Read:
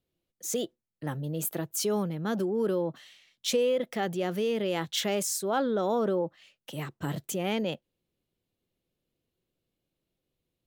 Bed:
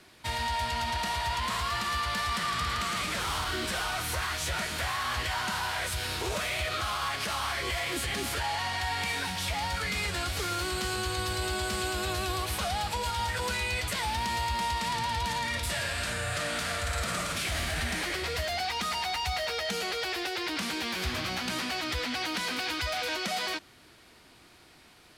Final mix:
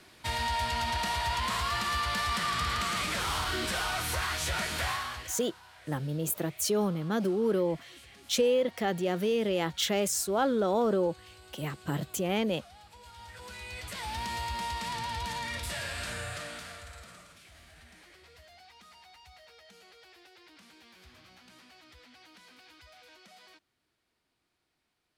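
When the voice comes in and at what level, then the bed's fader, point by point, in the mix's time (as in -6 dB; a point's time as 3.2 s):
4.85 s, +0.5 dB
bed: 4.92 s 0 dB
5.53 s -22.5 dB
12.88 s -22.5 dB
14.19 s -4.5 dB
16.2 s -4.5 dB
17.4 s -24 dB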